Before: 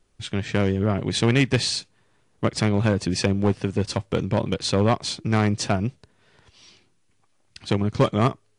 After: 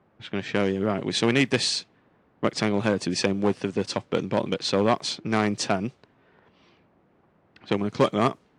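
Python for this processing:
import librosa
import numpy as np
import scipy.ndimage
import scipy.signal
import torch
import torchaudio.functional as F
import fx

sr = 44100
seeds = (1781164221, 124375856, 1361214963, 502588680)

y = fx.dmg_noise_colour(x, sr, seeds[0], colour='brown', level_db=-50.0)
y = fx.env_lowpass(y, sr, base_hz=1600.0, full_db=-17.5)
y = scipy.signal.sosfilt(scipy.signal.butter(2, 200.0, 'highpass', fs=sr, output='sos'), y)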